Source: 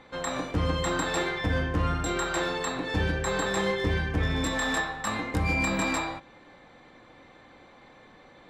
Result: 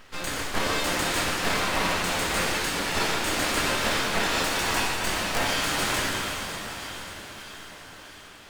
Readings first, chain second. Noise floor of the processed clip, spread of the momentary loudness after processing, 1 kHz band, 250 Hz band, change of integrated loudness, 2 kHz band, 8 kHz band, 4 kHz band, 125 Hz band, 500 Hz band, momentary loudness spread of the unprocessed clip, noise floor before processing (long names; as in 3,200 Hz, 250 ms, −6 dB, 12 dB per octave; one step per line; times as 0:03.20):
−46 dBFS, 15 LU, +4.0 dB, −2.0 dB, +2.5 dB, +4.0 dB, +7.5 dB, +8.5 dB, −6.5 dB, 0.0 dB, 5 LU, −54 dBFS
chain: spectral envelope flattened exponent 0.6
parametric band 850 Hz +10.5 dB 0.62 octaves
feedback delay with all-pass diffusion 464 ms, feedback 61%, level −8 dB
full-wave rectification
dense smooth reverb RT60 2.1 s, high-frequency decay 0.95×, DRR 0.5 dB